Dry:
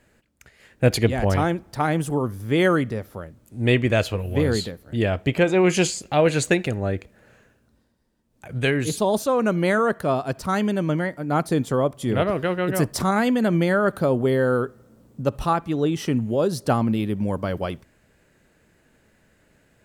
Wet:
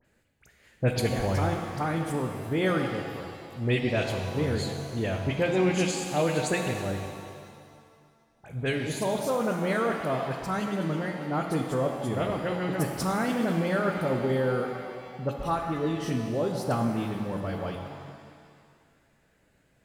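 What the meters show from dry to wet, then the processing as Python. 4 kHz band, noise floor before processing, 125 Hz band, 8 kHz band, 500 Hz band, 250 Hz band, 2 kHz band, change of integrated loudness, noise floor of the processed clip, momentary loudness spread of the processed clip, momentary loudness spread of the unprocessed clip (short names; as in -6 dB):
-5.5 dB, -63 dBFS, -5.5 dB, -6.0 dB, -6.5 dB, -6.5 dB, -6.0 dB, -6.5 dB, -66 dBFS, 8 LU, 8 LU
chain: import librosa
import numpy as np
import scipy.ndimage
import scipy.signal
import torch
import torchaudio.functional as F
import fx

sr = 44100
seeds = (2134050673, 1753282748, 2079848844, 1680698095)

y = fx.dispersion(x, sr, late='highs', ms=49.0, hz=2600.0)
y = fx.rev_shimmer(y, sr, seeds[0], rt60_s=2.0, semitones=7, shimmer_db=-8, drr_db=3.5)
y = F.gain(torch.from_numpy(y), -8.0).numpy()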